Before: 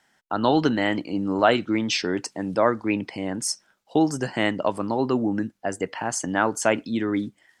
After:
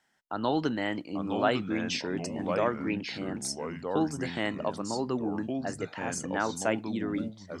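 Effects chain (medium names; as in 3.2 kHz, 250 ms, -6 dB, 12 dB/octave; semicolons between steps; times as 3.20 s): ever faster or slower copies 782 ms, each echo -3 st, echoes 2, each echo -6 dB; trim -8 dB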